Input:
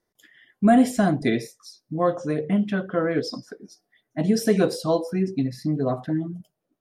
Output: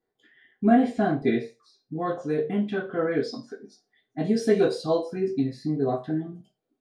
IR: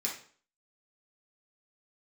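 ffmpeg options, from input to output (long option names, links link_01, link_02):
-filter_complex "[0:a]asetnsamples=nb_out_samples=441:pad=0,asendcmd='1.96 lowpass f 6000',lowpass=2900[link_01];[1:a]atrim=start_sample=2205,asetrate=83790,aresample=44100[link_02];[link_01][link_02]afir=irnorm=-1:irlink=0"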